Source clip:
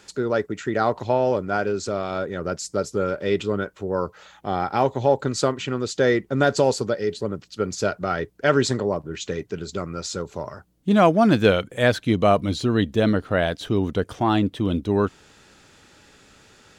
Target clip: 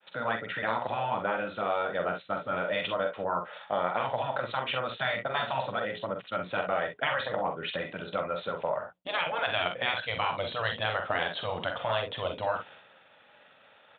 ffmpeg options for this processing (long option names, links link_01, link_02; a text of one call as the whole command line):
ffmpeg -i in.wav -filter_complex "[0:a]agate=range=-33dB:threshold=-46dB:ratio=3:detection=peak,highpass=160,afftfilt=real='re*lt(hypot(re,im),0.282)':imag='im*lt(hypot(re,im),0.282)':win_size=1024:overlap=0.75,lowshelf=frequency=460:width_type=q:width=3:gain=-7,acompressor=threshold=-27dB:ratio=4,atempo=1.2,asplit=2[link_01][link_02];[link_02]aecho=0:1:45|62:0.473|0.299[link_03];[link_01][link_03]amix=inputs=2:normalize=0,aresample=8000,aresample=44100,volume=1.5dB" out.wav